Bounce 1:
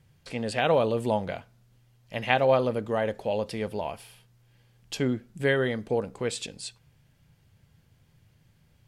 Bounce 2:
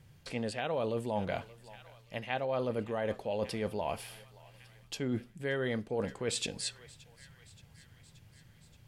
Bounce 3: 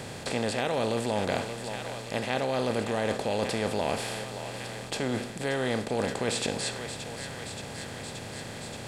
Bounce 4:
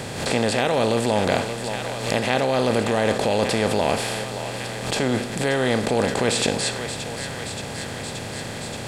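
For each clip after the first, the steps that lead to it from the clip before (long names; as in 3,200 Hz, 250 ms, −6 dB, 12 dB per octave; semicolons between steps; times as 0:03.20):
feedback echo with a high-pass in the loop 576 ms, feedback 70%, high-pass 1,100 Hz, level −23.5 dB; reversed playback; downward compressor 8 to 1, threshold −33 dBFS, peak gain reduction 16 dB; reversed playback; level +2.5 dB
compressor on every frequency bin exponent 0.4
background raised ahead of every attack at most 63 dB per second; level +7.5 dB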